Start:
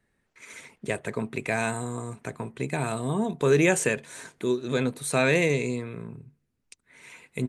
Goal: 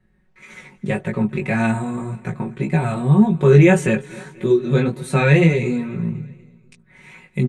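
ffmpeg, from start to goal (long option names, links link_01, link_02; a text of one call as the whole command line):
ffmpeg -i in.wav -filter_complex "[0:a]bass=frequency=250:gain=11,treble=frequency=4000:gain=-10,aecho=1:1:5.4:0.81,flanger=delay=17.5:depth=3.7:speed=1.8,asplit=2[link_01][link_02];[link_02]aecho=0:1:243|486|729|972:0.0794|0.0405|0.0207|0.0105[link_03];[link_01][link_03]amix=inputs=2:normalize=0,volume=5.5dB" out.wav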